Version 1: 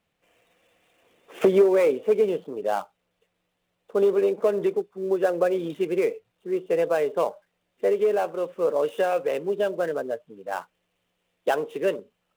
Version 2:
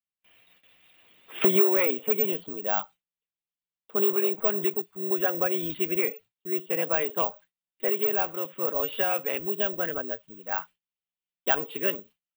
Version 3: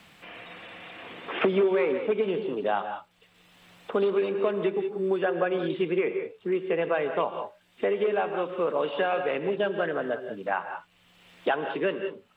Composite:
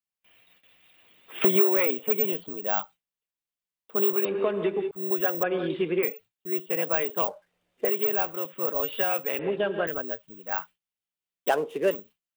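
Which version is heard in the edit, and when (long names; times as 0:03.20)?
2
0:04.25–0:04.91: punch in from 3
0:05.43–0:06.03: punch in from 3
0:07.28–0:07.85: punch in from 1
0:09.39–0:09.87: punch in from 3
0:11.49–0:11.91: punch in from 1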